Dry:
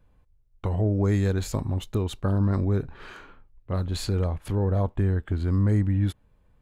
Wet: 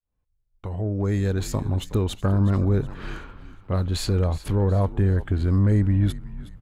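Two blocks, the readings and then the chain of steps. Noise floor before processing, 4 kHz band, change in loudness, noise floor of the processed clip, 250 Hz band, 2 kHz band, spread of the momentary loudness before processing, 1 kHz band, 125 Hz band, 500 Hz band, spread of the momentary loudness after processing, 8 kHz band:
-62 dBFS, +3.5 dB, +2.5 dB, -72 dBFS, +2.0 dB, +2.5 dB, 8 LU, +2.5 dB, +2.5 dB, +2.0 dB, 16 LU, +3.0 dB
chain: fade-in on the opening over 1.85 s; frequency-shifting echo 368 ms, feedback 41%, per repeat -66 Hz, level -16 dB; saturation -14 dBFS, distortion -23 dB; trim +4 dB

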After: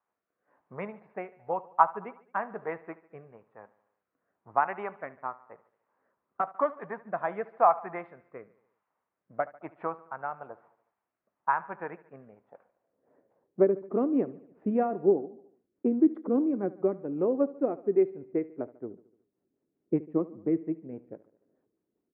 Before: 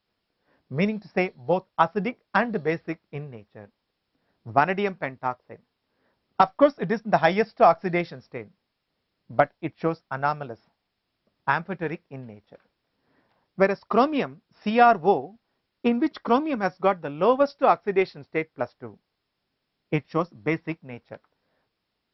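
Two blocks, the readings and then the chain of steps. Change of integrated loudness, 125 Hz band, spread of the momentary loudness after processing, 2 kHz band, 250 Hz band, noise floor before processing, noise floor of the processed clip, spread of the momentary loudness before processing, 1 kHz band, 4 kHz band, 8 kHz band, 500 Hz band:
-5.5 dB, -11.5 dB, 18 LU, -12.0 dB, -2.5 dB, -79 dBFS, -85 dBFS, 18 LU, -7.0 dB, under -30 dB, no reading, -5.5 dB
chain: low-pass 2.4 kHz 24 dB/octave; bass shelf 210 Hz +5.5 dB; in parallel at +1.5 dB: compression, threshold -32 dBFS, peak gain reduction 19.5 dB; on the sum: band-pass sweep 1 kHz -> 340 Hz, 12.31–13.78 s; rotary cabinet horn 1 Hz, later 5 Hz, at 12.57 s; on a send: feedback delay 73 ms, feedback 57%, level -19 dB

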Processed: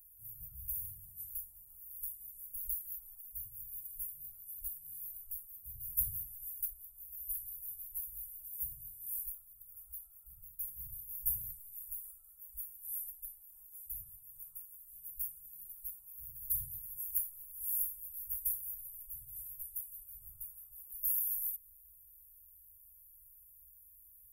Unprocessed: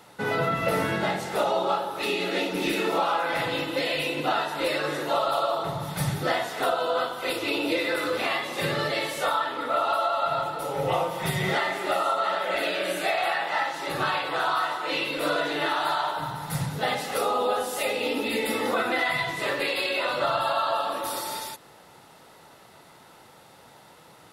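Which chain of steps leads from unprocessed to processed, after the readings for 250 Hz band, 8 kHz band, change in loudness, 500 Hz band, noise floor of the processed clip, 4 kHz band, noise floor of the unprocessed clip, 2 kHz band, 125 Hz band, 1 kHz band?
under -40 dB, -5.0 dB, -13.0 dB, under -40 dB, -60 dBFS, under -40 dB, -52 dBFS, under -40 dB, -23.0 dB, under -40 dB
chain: inverse Chebyshev band-stop 230–4500 Hz, stop band 70 dB; treble shelf 8 kHz +10 dB; trim +7 dB

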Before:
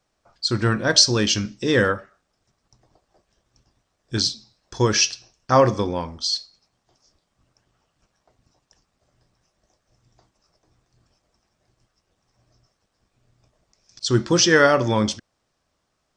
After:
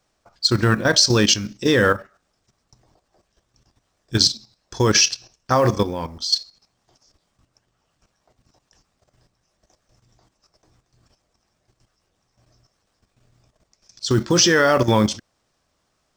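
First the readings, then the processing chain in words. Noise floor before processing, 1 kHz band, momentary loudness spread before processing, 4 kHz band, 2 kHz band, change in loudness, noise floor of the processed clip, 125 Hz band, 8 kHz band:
-74 dBFS, +0.5 dB, 12 LU, +2.0 dB, +1.0 dB, +1.5 dB, -71 dBFS, +2.0 dB, +2.5 dB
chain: level held to a coarse grid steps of 11 dB; treble shelf 5.1 kHz +2.5 dB; short-mantissa float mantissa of 4-bit; trim +6.5 dB

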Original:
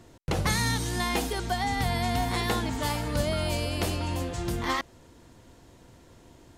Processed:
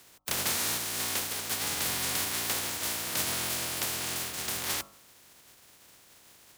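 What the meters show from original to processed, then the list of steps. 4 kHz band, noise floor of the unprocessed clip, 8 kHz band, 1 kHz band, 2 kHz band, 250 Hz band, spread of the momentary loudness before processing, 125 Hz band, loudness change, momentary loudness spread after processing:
+1.0 dB, -55 dBFS, +7.0 dB, -9.0 dB, -3.0 dB, -12.0 dB, 5 LU, -15.5 dB, -1.0 dB, 4 LU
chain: spectral contrast reduction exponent 0.16; frequency shift +37 Hz; de-hum 50.49 Hz, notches 27; trim -3.5 dB

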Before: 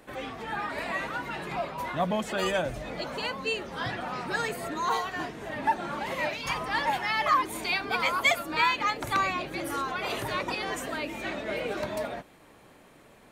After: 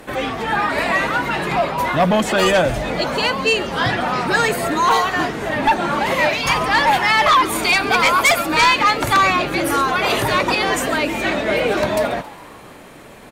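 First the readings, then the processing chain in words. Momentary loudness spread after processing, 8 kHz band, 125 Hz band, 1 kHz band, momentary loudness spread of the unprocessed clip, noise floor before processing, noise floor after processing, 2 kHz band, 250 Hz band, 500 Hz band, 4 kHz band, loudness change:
6 LU, +14.5 dB, +13.5 dB, +12.5 dB, 10 LU, -55 dBFS, -40 dBFS, +12.5 dB, +13.5 dB, +13.5 dB, +13.0 dB, +13.0 dB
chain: sine folder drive 7 dB, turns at -12.5 dBFS; frequency-shifting echo 137 ms, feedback 61%, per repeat +120 Hz, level -19 dB; trim +3.5 dB

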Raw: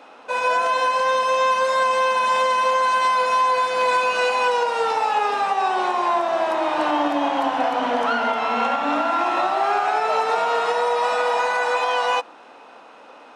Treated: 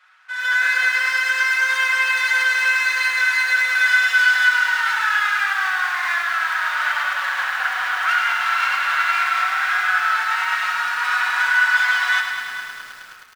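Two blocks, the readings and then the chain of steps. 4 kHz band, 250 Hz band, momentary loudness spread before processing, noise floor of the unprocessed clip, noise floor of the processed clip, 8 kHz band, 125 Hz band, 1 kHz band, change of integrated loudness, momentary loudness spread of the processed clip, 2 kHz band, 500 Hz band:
+4.0 dB, under -25 dB, 3 LU, -45 dBFS, -39 dBFS, +4.5 dB, no reading, -5.5 dB, +2.5 dB, 6 LU, +11.5 dB, -23.0 dB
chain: comb filter that takes the minimum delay 5.4 ms; level rider gain up to 12 dB; ladder high-pass 1.3 kHz, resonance 60%; on a send: feedback delay 442 ms, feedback 26%, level -17.5 dB; on the sum: bit-crushed delay 105 ms, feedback 80%, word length 7-bit, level -7 dB

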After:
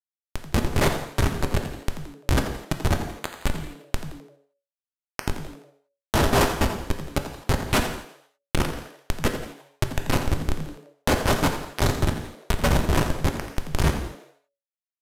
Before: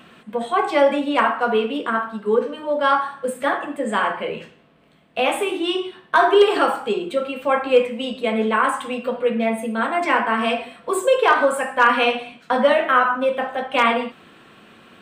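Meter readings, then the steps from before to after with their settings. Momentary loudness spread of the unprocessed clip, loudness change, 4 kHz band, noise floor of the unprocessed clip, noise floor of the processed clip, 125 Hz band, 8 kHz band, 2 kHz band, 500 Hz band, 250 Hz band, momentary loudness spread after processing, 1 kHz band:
10 LU, -6.5 dB, -4.0 dB, -51 dBFS, under -85 dBFS, no reading, +5.0 dB, -9.0 dB, -11.0 dB, -3.5 dB, 13 LU, -11.0 dB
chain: spectral contrast reduction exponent 0.15; high-pass 56 Hz 12 dB/octave; peaking EQ 1 kHz +7.5 dB 2.7 oct; harmonic-percussive split harmonic -8 dB; in parallel at -0.5 dB: compression 8:1, threshold -31 dBFS, peak gain reduction 24 dB; on the sum: Schmitt trigger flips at -6.5 dBFS; frequency-shifting echo 85 ms, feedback 36%, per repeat +140 Hz, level -12.5 dB; gated-style reverb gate 260 ms falling, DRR 5 dB; resampled via 32 kHz; tape noise reduction on one side only encoder only

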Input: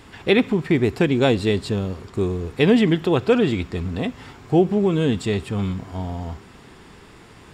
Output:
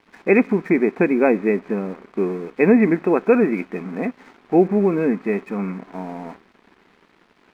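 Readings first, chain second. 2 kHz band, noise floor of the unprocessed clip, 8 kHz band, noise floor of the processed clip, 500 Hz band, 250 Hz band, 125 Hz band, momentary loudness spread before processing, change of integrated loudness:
+1.5 dB, -46 dBFS, no reading, -58 dBFS, +2.0 dB, +1.5 dB, -6.5 dB, 12 LU, +1.5 dB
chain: in parallel at -11 dB: bit crusher 5-bit; on the sum: brick-wall FIR band-pass 170–2600 Hz; crossover distortion -47.5 dBFS

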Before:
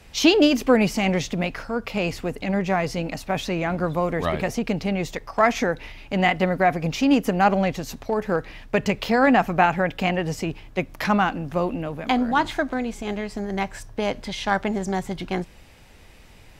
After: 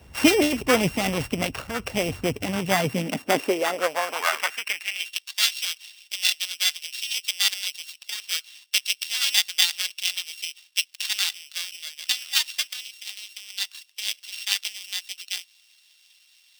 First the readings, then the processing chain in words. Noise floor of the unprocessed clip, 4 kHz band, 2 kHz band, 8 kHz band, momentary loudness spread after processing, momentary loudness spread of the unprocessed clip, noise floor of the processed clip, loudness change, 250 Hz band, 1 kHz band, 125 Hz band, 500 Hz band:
-48 dBFS, +8.0 dB, -1.5 dB, +9.5 dB, 12 LU, 11 LU, -59 dBFS, -1.5 dB, -8.0 dB, -9.0 dB, -8.0 dB, -6.0 dB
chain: sorted samples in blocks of 16 samples; harmonic-percussive split harmonic -11 dB; high-pass sweep 63 Hz -> 3.7 kHz, 2.22–5.22 s; trim +4 dB

